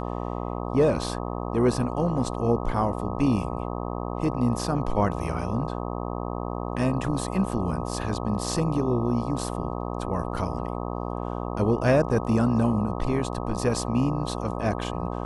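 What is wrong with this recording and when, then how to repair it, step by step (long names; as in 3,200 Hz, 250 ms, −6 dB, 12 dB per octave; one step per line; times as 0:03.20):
mains buzz 60 Hz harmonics 21 −31 dBFS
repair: hum removal 60 Hz, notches 21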